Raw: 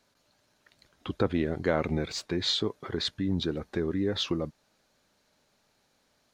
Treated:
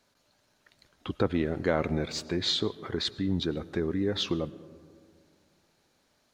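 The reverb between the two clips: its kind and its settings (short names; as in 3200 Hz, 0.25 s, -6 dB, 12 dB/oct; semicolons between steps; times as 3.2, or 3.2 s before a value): digital reverb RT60 2.2 s, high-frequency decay 0.3×, pre-delay 65 ms, DRR 17.5 dB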